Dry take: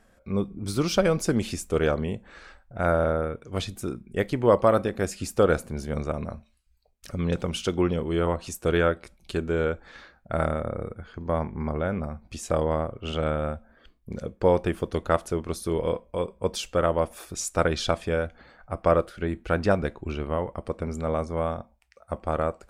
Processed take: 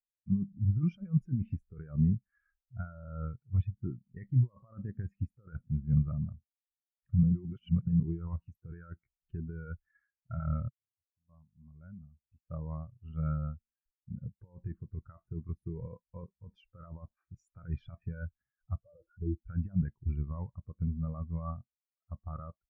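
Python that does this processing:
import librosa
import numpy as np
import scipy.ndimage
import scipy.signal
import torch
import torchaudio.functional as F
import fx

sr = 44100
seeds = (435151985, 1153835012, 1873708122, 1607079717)

y = fx.spec_expand(x, sr, power=2.4, at=(18.81, 19.48))
y = fx.edit(y, sr, fx.reverse_span(start_s=7.23, length_s=0.77),
    fx.fade_in_span(start_s=10.69, length_s=3.5), tone=tone)
y = fx.over_compress(y, sr, threshold_db=-27.0, ratio=-1.0)
y = fx.graphic_eq_10(y, sr, hz=(125, 500, 1000, 2000, 4000, 8000), db=(7, -8, 3, 7, -8, -10))
y = fx.spectral_expand(y, sr, expansion=2.5)
y = y * librosa.db_to_amplitude(-4.0)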